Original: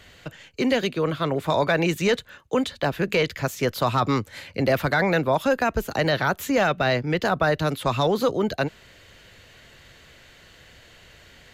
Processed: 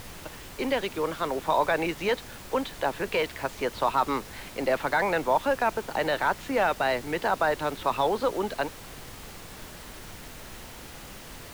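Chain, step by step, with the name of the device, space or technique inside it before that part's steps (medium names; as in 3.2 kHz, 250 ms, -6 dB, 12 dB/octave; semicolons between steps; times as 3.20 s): horn gramophone (band-pass 300–3700 Hz; peaking EQ 900 Hz +8 dB 0.33 oct; wow and flutter; pink noise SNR 14 dB); trim -4 dB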